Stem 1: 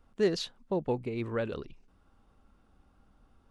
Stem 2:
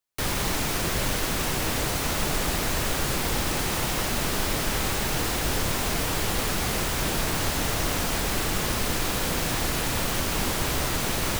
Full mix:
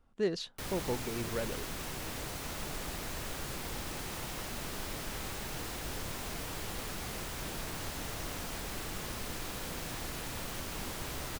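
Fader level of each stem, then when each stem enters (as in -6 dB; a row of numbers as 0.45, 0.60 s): -4.5, -13.5 dB; 0.00, 0.40 s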